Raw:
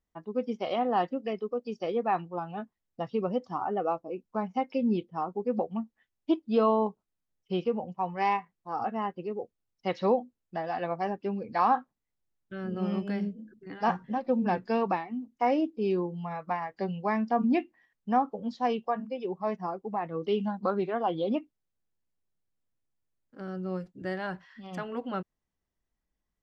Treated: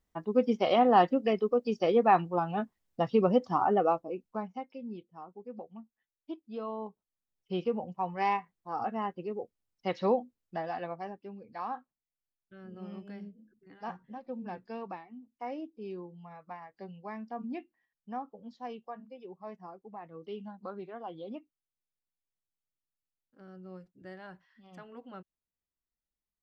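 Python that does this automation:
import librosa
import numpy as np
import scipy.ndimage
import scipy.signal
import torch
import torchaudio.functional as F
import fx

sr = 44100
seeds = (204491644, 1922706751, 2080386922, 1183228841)

y = fx.gain(x, sr, db=fx.line((3.72, 5.0), (4.37, -4.0), (4.76, -14.5), (6.64, -14.5), (7.65, -2.0), (10.63, -2.0), (11.27, -13.0)))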